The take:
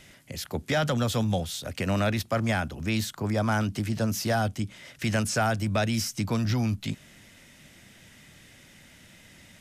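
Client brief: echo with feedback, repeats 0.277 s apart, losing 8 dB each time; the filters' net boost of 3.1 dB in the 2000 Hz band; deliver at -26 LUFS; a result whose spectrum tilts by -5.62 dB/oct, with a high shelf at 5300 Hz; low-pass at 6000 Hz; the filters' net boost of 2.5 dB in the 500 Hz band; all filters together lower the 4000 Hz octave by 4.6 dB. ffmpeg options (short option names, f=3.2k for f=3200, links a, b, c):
-af "lowpass=6k,equalizer=f=500:t=o:g=3,equalizer=f=2k:t=o:g=6,equalizer=f=4k:t=o:g=-4,highshelf=f=5.3k:g=-7.5,aecho=1:1:277|554|831|1108|1385:0.398|0.159|0.0637|0.0255|0.0102,volume=0.5dB"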